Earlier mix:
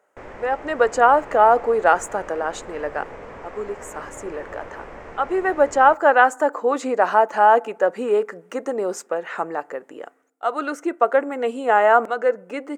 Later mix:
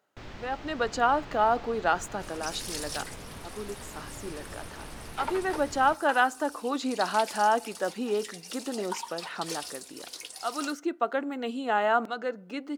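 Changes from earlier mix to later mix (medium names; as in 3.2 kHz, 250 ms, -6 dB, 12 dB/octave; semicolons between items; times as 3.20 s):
first sound: add treble shelf 2.6 kHz +9.5 dB; second sound: unmuted; master: add graphic EQ 125/500/1000/2000/4000/8000 Hz +4/-12/-6/-9/+9/-10 dB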